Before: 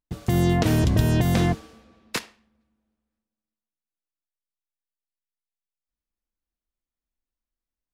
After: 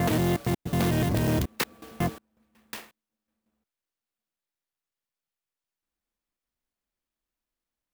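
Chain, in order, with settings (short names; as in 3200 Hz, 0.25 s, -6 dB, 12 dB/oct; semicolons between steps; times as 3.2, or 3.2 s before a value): slices in reverse order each 0.182 s, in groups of 4; in parallel at -3 dB: compressor, threshold -30 dBFS, peak gain reduction 15 dB; on the sum: soft clip -16.5 dBFS, distortion -14 dB; low shelf 96 Hz -10.5 dB; clock jitter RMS 0.038 ms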